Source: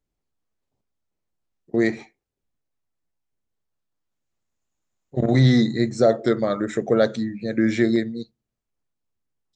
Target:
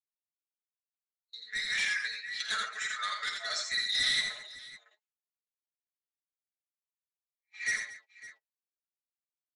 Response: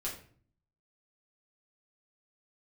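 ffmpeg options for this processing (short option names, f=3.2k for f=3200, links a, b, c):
-filter_complex "[0:a]areverse,agate=range=-33dB:threshold=-34dB:ratio=3:detection=peak,highpass=f=1.5k:w=0.5412,highpass=f=1.5k:w=1.3066,highshelf=f=2.6k:g=8,aecho=1:1:4.7:0.93,asplit=2[a][b];[b]acompressor=threshold=-40dB:ratio=6,volume=-1dB[c];[a][c]amix=inputs=2:normalize=0,flanger=delay=4.8:depth=8.8:regen=24:speed=0.31:shape=triangular,adynamicsmooth=sensitivity=1:basefreq=3.6k,asoftclip=type=tanh:threshold=-30dB,asplit=2[d][e];[e]aecho=0:1:51|82|87|138|225|557:0.282|0.422|0.422|0.1|0.141|0.158[f];[d][f]amix=inputs=2:normalize=0,aresample=22050,aresample=44100,adynamicequalizer=threshold=0.00562:dfrequency=1900:dqfactor=0.7:tfrequency=1900:tqfactor=0.7:attack=5:release=100:ratio=0.375:range=2.5:mode=boostabove:tftype=highshelf"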